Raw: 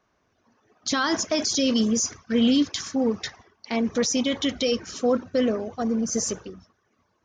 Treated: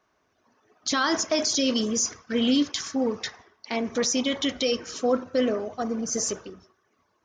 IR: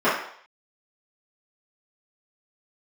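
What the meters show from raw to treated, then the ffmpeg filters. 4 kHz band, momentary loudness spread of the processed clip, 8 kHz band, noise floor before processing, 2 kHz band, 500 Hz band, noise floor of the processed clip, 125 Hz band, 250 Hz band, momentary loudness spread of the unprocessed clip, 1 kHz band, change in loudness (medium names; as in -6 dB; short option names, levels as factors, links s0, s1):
0.0 dB, 8 LU, 0.0 dB, -70 dBFS, 0.0 dB, -1.0 dB, -71 dBFS, -5.0 dB, -3.0 dB, 8 LU, +0.5 dB, -1.5 dB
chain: -filter_complex "[0:a]lowshelf=f=250:g=-6,asplit=2[s0][s1];[1:a]atrim=start_sample=2205[s2];[s1][s2]afir=irnorm=-1:irlink=0,volume=0.0237[s3];[s0][s3]amix=inputs=2:normalize=0"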